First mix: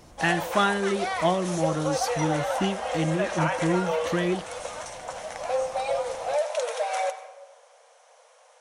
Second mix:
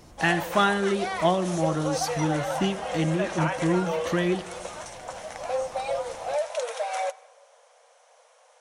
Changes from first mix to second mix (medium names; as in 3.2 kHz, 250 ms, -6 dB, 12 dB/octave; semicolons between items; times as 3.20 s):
speech: send on; background: send -11.0 dB